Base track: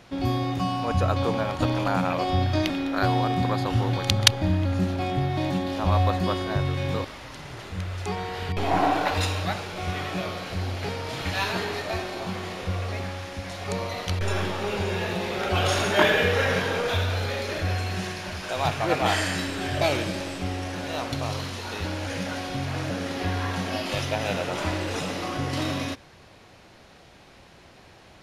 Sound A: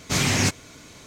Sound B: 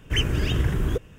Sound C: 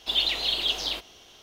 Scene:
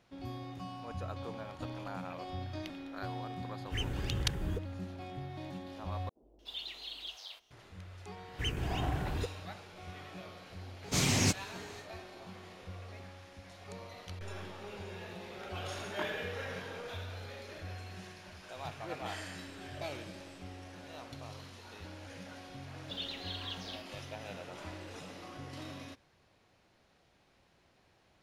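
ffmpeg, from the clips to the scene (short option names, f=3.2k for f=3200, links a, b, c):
-filter_complex "[2:a]asplit=2[a][b];[3:a]asplit=2[c][d];[0:a]volume=-17.5dB[e];[c]acrossover=split=150|530[f][g][h];[f]adelay=60[i];[h]adelay=300[j];[i][g][j]amix=inputs=3:normalize=0[k];[b]highpass=42[l];[1:a]equalizer=f=1.6k:t=o:w=1.2:g=-5[m];[d]equalizer=f=11k:w=1.5:g=-9[n];[e]asplit=2[o][p];[o]atrim=end=6.094[q];[k]atrim=end=1.42,asetpts=PTS-STARTPTS,volume=-18dB[r];[p]atrim=start=7.506[s];[a]atrim=end=1.18,asetpts=PTS-STARTPTS,volume=-13.5dB,afade=t=in:d=0.004:c=hsin,afade=t=out:st=1.176:d=0.004:c=hsin,adelay=159201S[t];[l]atrim=end=1.18,asetpts=PTS-STARTPTS,volume=-11.5dB,afade=t=in:d=0.004:c=hsin,afade=t=out:st=1.176:d=0.004:c=hsin,adelay=8280[u];[m]atrim=end=1.06,asetpts=PTS-STARTPTS,volume=-6.5dB,afade=t=in:d=0.1,afade=t=out:st=0.96:d=0.1,adelay=477162S[v];[n]atrim=end=1.42,asetpts=PTS-STARTPTS,volume=-16.5dB,afade=t=in:d=0.004:c=hsin,afade=t=out:st=1.416:d=0.004:c=hsin,adelay=22820[w];[q][r]acrossfade=d=0.004:c1=hsin:c2=hsin[x];[x][s]acrossfade=d=0.004:c1=hsin:c2=hsin[y];[y][t][u][v][w]amix=inputs=5:normalize=0"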